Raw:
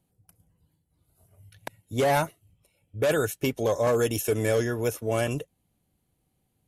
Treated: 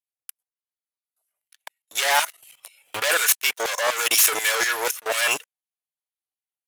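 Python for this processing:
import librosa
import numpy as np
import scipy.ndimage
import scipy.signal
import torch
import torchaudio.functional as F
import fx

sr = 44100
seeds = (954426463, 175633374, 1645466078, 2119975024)

y = fx.tracing_dist(x, sr, depth_ms=0.033)
y = scipy.signal.sosfilt(scipy.signal.butter(4, 100.0, 'highpass', fs=sr, output='sos'), y)
y = fx.peak_eq(y, sr, hz=210.0, db=-9.5, octaves=1.5)
y = fx.leveller(y, sr, passes=5)
y = fx.level_steps(y, sr, step_db=20)
y = fx.filter_lfo_highpass(y, sr, shape='saw_down', hz=4.1, low_hz=810.0, high_hz=2400.0, q=0.85)
y = fx.pre_swell(y, sr, db_per_s=45.0, at=(1.97, 3.23))
y = y * 10.0 ** (5.0 / 20.0)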